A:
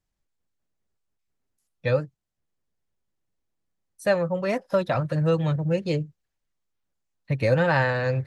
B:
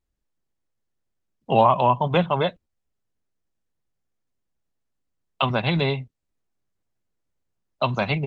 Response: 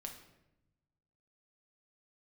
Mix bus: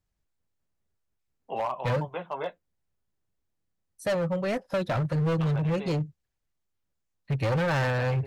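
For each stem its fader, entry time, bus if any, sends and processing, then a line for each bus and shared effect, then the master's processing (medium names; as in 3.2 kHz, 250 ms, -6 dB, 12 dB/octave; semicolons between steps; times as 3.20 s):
-2.0 dB, 0.00 s, no send, peaking EQ 75 Hz +6.5 dB 2 oct
-1.0 dB, 0.00 s, no send, three-band isolator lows -15 dB, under 320 Hz, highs -21 dB, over 2.8 kHz; flange 0.54 Hz, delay 7.3 ms, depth 8 ms, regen -35%; auto duck -9 dB, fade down 0.90 s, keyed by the first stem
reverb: none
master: hard clipper -23 dBFS, distortion -10 dB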